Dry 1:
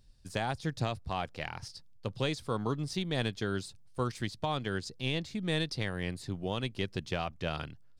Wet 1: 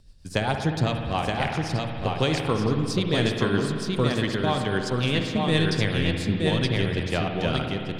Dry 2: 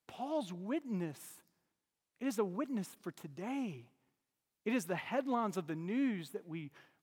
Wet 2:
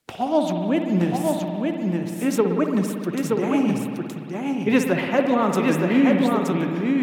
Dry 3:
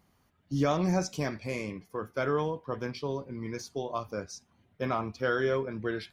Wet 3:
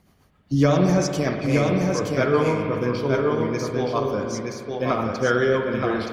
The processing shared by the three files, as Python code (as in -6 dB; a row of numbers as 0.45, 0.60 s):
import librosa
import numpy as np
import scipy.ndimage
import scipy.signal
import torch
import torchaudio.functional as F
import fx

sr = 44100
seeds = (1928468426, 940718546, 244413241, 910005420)

y = fx.rotary(x, sr, hz=7.5)
y = y + 10.0 ** (-3.5 / 20.0) * np.pad(y, (int(922 * sr / 1000.0), 0))[:len(y)]
y = fx.rev_spring(y, sr, rt60_s=2.4, pass_ms=(57,), chirp_ms=40, drr_db=4.0)
y = y * 10.0 ** (-6 / 20.0) / np.max(np.abs(y))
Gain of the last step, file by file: +9.5, +17.0, +10.0 dB